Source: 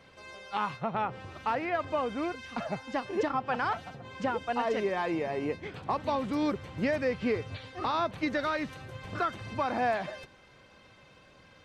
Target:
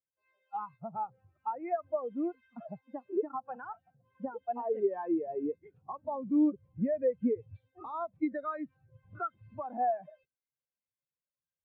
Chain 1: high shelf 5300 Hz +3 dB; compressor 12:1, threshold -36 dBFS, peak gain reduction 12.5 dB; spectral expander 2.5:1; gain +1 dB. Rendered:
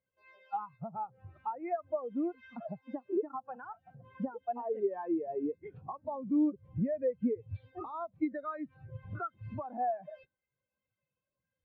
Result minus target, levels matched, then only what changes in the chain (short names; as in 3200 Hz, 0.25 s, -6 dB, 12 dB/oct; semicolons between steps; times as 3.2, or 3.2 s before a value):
compressor: peak gain reduction +7.5 dB
change: compressor 12:1, threshold -28 dBFS, peak gain reduction 5 dB